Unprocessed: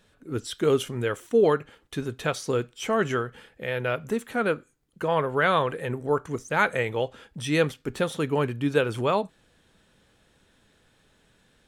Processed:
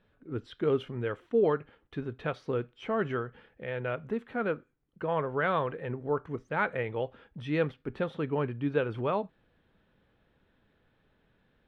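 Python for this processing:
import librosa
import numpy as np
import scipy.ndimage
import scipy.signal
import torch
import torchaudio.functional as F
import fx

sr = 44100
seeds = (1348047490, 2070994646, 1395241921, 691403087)

y = fx.air_absorb(x, sr, metres=370.0)
y = y * 10.0 ** (-4.5 / 20.0)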